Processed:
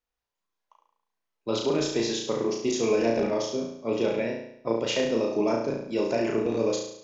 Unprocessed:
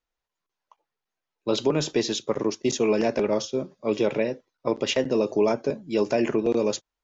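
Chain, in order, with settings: on a send: flutter echo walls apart 6 m, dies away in 0.71 s; on the sum: trim -4.5 dB

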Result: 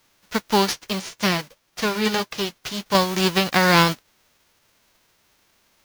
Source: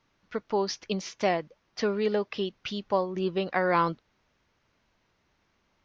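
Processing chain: formants flattened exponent 0.3; 0.73–2.95 s: flange 1.9 Hz, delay 5.6 ms, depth 3.3 ms, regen -43%; trim +8.5 dB

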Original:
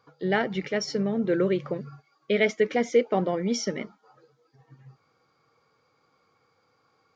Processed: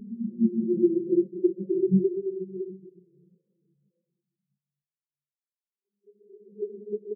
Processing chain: low-pass that closes with the level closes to 360 Hz, closed at -24.5 dBFS; Paulstretch 6×, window 0.50 s, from 1.17 s; feedback delay 125 ms, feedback 50%, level -7.5 dB; spectral contrast expander 4:1; trim +2 dB

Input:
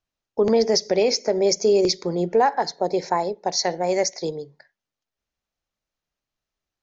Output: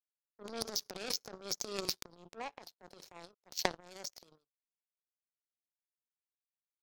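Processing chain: high-pass 63 Hz; resonant high shelf 2.3 kHz +6.5 dB, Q 3; transient shaper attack -6 dB, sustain +9 dB; power-law waveshaper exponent 3; trim -3.5 dB

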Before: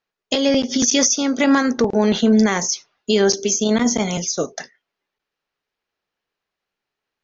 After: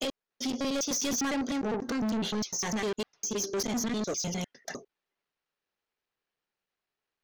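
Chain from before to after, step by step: slices played last to first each 101 ms, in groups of 4; saturation -21 dBFS, distortion -7 dB; trim -6.5 dB

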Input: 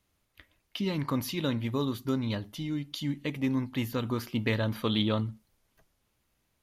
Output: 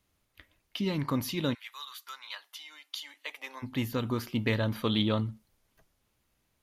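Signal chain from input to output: 1.53–3.62 s: high-pass 1.4 kHz -> 600 Hz 24 dB/octave

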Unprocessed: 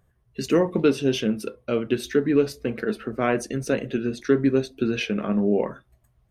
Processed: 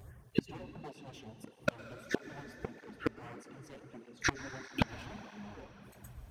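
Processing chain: one-sided wavefolder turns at -22.5 dBFS; LFO notch sine 1.6 Hz 370–4200 Hz; inverted gate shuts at -26 dBFS, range -37 dB; reverberation RT60 4.2 s, pre-delay 98 ms, DRR 11 dB; cancelling through-zero flanger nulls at 1.6 Hz, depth 6.5 ms; trim +15.5 dB

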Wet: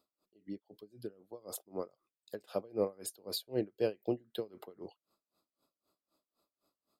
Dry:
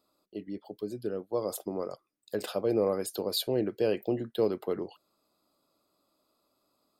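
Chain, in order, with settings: logarithmic tremolo 3.9 Hz, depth 27 dB; trim -2.5 dB

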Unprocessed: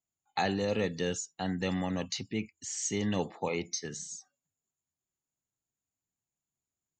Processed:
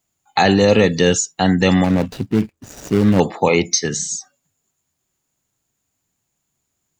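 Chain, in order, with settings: 1.84–3.20 s: median filter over 41 samples; loudness maximiser +19 dB; trim -1 dB

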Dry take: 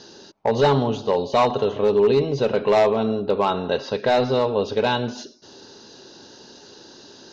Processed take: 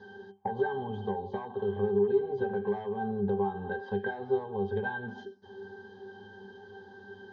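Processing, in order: peaking EQ 1.2 kHz +10.5 dB 1.7 oct; compression 10:1, threshold -21 dBFS, peak gain reduction 15 dB; pitch-class resonator G, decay 0.22 s; trim +7.5 dB

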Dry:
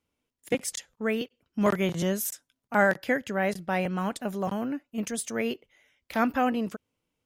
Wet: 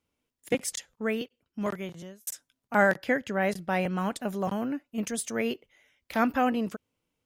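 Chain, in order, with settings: 0.89–2.27 s: fade out; 2.96–3.41 s: treble shelf 8.1 kHz -7 dB

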